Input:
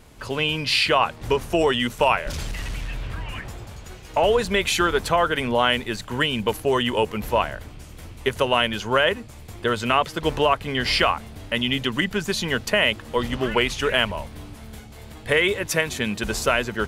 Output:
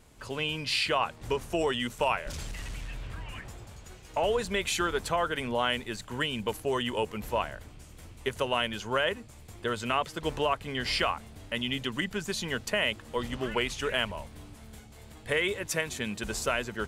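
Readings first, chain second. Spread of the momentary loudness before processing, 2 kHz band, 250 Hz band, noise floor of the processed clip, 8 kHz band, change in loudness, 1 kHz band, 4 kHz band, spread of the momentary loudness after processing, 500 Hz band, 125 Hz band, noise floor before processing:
17 LU, -8.5 dB, -8.5 dB, -50 dBFS, -5.5 dB, -8.5 dB, -8.5 dB, -8.0 dB, 17 LU, -8.5 dB, -8.5 dB, -42 dBFS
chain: bell 7800 Hz +4.5 dB 0.65 oct; gain -8.5 dB

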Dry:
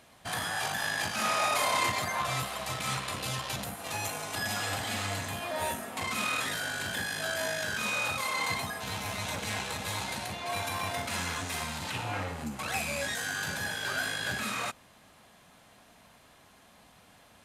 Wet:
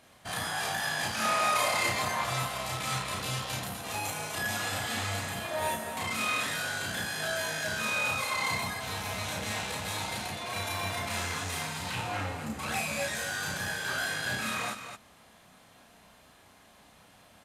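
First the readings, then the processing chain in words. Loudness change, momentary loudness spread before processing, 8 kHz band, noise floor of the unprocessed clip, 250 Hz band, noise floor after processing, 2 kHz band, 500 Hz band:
+0.5 dB, 6 LU, +0.5 dB, -59 dBFS, +0.5 dB, -58 dBFS, +0.5 dB, +0.5 dB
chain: loudspeakers at several distances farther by 11 m -1 dB, 86 m -7 dB; gain -2.5 dB

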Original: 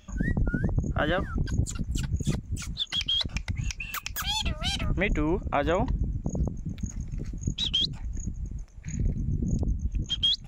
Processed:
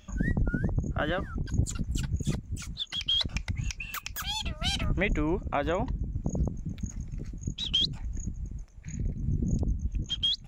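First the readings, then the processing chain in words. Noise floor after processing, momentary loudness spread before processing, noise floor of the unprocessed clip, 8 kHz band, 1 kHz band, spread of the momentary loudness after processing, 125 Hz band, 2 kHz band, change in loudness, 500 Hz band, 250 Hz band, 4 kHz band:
-48 dBFS, 11 LU, -45 dBFS, -2.0 dB, -3.0 dB, 12 LU, -2.0 dB, -2.0 dB, -2.0 dB, -2.5 dB, -2.0 dB, -2.0 dB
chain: tremolo saw down 0.65 Hz, depth 45%

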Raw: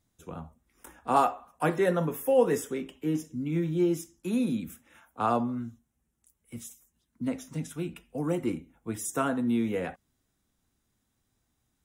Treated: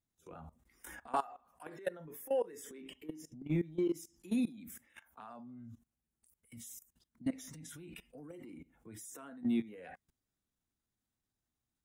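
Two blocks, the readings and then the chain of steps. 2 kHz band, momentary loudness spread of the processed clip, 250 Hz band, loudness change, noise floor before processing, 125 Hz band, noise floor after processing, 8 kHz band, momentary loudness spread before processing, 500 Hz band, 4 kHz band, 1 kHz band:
-12.5 dB, 19 LU, -9.0 dB, -10.0 dB, -78 dBFS, -11.5 dB, under -85 dBFS, -9.5 dB, 18 LU, -12.0 dB, -9.0 dB, -14.0 dB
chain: compressor 10:1, threshold -37 dBFS, peak gain reduction 20 dB; spectral noise reduction 9 dB; transient shaper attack -9 dB, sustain +3 dB; level quantiser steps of 20 dB; gain +10 dB

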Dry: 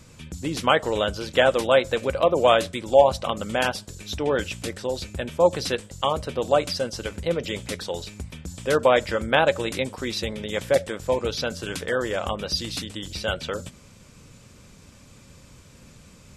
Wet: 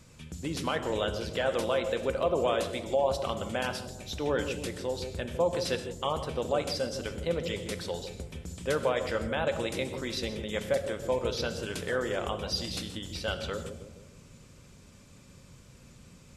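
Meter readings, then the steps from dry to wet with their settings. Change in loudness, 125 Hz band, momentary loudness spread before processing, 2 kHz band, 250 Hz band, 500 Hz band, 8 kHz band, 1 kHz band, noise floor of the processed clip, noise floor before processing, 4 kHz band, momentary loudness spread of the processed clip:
-7.5 dB, -4.5 dB, 13 LU, -8.5 dB, -5.5 dB, -7.5 dB, -5.5 dB, -9.5 dB, -54 dBFS, -50 dBFS, -7.0 dB, 9 LU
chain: limiter -12.5 dBFS, peak gain reduction 9 dB; dark delay 0.156 s, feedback 50%, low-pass 470 Hz, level -4.5 dB; non-linear reverb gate 0.19 s flat, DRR 9.5 dB; gain -6 dB

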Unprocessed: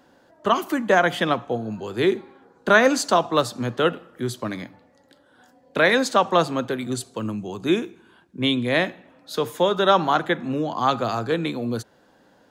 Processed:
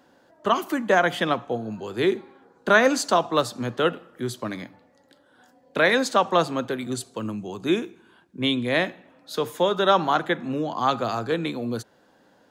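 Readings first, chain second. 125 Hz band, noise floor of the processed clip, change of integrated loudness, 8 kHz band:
-3.0 dB, -60 dBFS, -1.5 dB, -1.5 dB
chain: low shelf 76 Hz -6.5 dB; gain -1.5 dB

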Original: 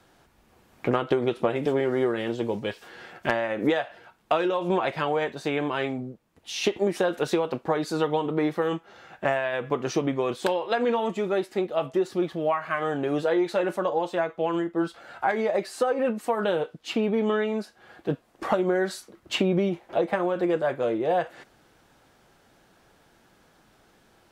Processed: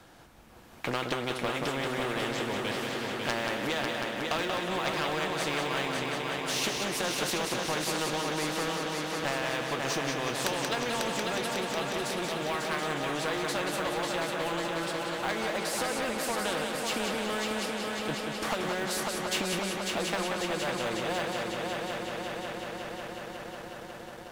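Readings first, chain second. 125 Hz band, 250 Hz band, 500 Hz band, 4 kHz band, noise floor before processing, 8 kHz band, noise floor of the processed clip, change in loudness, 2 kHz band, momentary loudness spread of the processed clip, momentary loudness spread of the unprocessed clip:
-4.0 dB, -7.0 dB, -7.5 dB, +5.0 dB, -61 dBFS, +9.0 dB, -43 dBFS, -4.5 dB, +1.0 dB, 5 LU, 8 LU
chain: notch 400 Hz, Q 12; on a send: multi-head echo 0.182 s, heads first and third, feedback 72%, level -8 dB; on the sum: sample leveller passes 1; spectral compressor 2:1; gain -4 dB

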